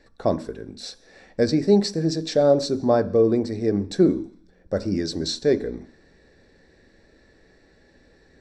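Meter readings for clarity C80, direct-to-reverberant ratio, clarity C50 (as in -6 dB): 20.0 dB, 10.0 dB, 17.0 dB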